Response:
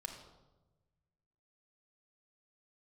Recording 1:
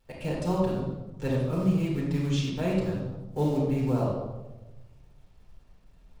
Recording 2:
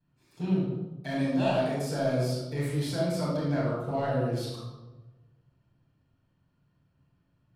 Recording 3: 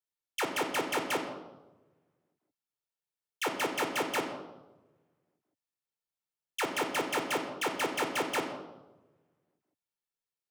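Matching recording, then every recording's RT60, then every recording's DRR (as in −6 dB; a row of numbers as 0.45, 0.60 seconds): 3; 1.1, 1.1, 1.1 seconds; −5.5, −13.5, 3.5 decibels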